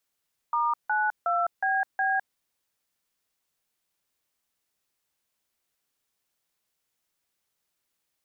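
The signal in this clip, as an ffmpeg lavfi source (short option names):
-f lavfi -i "aevalsrc='0.0562*clip(min(mod(t,0.365),0.207-mod(t,0.365))/0.002,0,1)*(eq(floor(t/0.365),0)*(sin(2*PI*941*mod(t,0.365))+sin(2*PI*1209*mod(t,0.365)))+eq(floor(t/0.365),1)*(sin(2*PI*852*mod(t,0.365))+sin(2*PI*1477*mod(t,0.365)))+eq(floor(t/0.365),2)*(sin(2*PI*697*mod(t,0.365))+sin(2*PI*1336*mod(t,0.365)))+eq(floor(t/0.365),3)*(sin(2*PI*770*mod(t,0.365))+sin(2*PI*1633*mod(t,0.365)))+eq(floor(t/0.365),4)*(sin(2*PI*770*mod(t,0.365))+sin(2*PI*1633*mod(t,0.365))))':d=1.825:s=44100"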